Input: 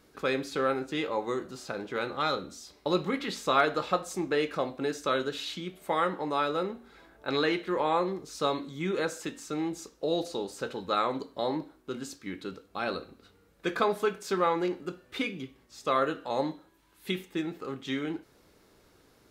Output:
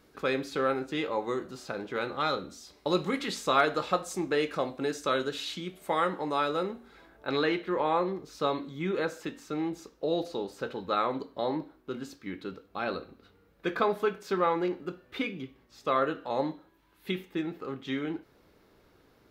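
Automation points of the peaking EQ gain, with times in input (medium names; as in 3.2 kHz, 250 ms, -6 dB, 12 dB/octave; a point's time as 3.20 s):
peaking EQ 8.3 kHz 1.4 oct
2.63 s -3.5 dB
3.20 s +7.5 dB
3.45 s +1 dB
6.63 s +1 dB
7.67 s -10.5 dB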